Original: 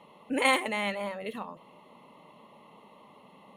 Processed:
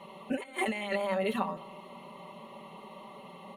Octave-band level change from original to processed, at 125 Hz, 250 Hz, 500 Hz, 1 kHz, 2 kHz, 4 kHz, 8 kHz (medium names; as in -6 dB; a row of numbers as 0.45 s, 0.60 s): +4.0 dB, 0.0 dB, +0.5 dB, -3.5 dB, -6.5 dB, -7.5 dB, -8.5 dB